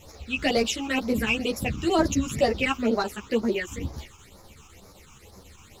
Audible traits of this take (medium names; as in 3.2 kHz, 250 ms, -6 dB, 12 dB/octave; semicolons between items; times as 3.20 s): a quantiser's noise floor 12-bit, dither triangular; phasing stages 8, 2.1 Hz, lowest notch 550–2900 Hz; chopped level 7.9 Hz, duty 90%; a shimmering, thickened sound